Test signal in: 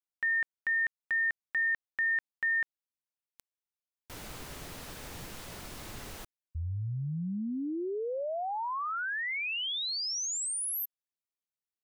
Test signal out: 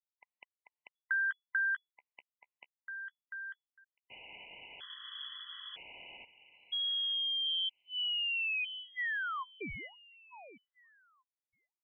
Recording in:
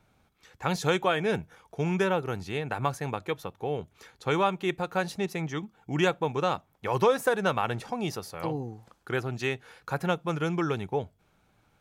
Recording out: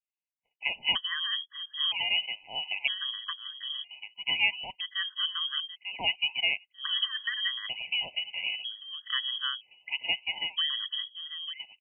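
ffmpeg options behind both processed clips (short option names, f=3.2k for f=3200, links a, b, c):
-filter_complex "[0:a]adynamicequalizer=threshold=0.00631:dfrequency=2200:dqfactor=2:tfrequency=2200:tqfactor=2:attack=5:release=100:ratio=0.375:range=2.5:mode=cutabove:tftype=bell,agate=range=-33dB:threshold=-47dB:ratio=3:release=26:detection=peak,asplit=2[a][b];[b]adelay=894,lowpass=f=1.6k:p=1,volume=-9dB,asplit=2[c][d];[d]adelay=894,lowpass=f=1.6k:p=1,volume=0.17,asplit=2[e][f];[f]adelay=894,lowpass=f=1.6k:p=1,volume=0.17[g];[c][e][g]amix=inputs=3:normalize=0[h];[a][h]amix=inputs=2:normalize=0,lowpass=f=2.9k:t=q:w=0.5098,lowpass=f=2.9k:t=q:w=0.6013,lowpass=f=2.9k:t=q:w=0.9,lowpass=f=2.9k:t=q:w=2.563,afreqshift=-3400,afftfilt=real='re*gt(sin(2*PI*0.52*pts/sr)*(1-2*mod(floor(b*sr/1024/1000),2)),0)':imag='im*gt(sin(2*PI*0.52*pts/sr)*(1-2*mod(floor(b*sr/1024/1000),2)),0)':win_size=1024:overlap=0.75"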